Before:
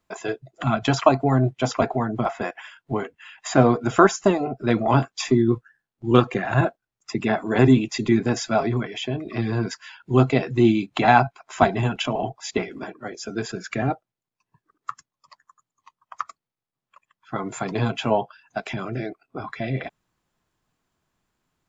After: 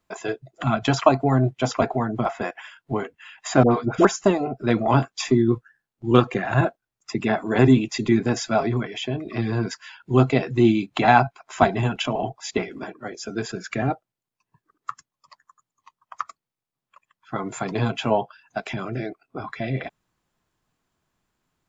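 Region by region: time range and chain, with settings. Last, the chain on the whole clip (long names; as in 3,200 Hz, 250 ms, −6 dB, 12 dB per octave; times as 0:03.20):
0:03.63–0:04.05: high-frequency loss of the air 55 metres + all-pass dispersion highs, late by 86 ms, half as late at 1,000 Hz
whole clip: no processing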